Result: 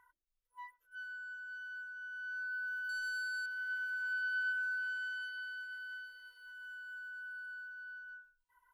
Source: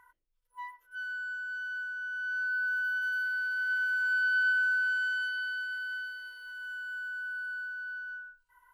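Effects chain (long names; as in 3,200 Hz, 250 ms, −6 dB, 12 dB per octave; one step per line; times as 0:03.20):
reverb reduction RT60 0.56 s
0:02.89–0:03.46: leveller curve on the samples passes 2
level −7 dB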